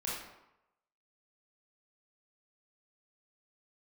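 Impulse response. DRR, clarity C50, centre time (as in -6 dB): -6.5 dB, 0.0 dB, 65 ms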